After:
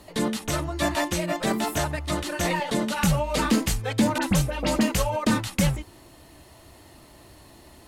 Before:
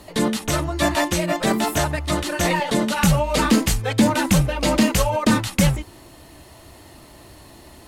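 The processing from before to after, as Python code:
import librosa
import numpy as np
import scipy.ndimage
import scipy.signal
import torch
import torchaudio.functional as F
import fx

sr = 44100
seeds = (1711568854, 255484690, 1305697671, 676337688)

y = fx.dispersion(x, sr, late='highs', ms=45.0, hz=2700.0, at=(4.18, 4.81))
y = F.gain(torch.from_numpy(y), -5.0).numpy()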